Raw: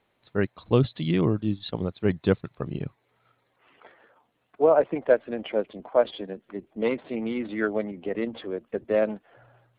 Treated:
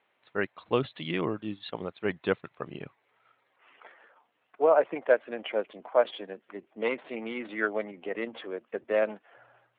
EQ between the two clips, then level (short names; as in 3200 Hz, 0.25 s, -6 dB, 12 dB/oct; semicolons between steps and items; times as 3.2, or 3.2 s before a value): HPF 930 Hz 6 dB/oct; LPF 3200 Hz 24 dB/oct; +3.0 dB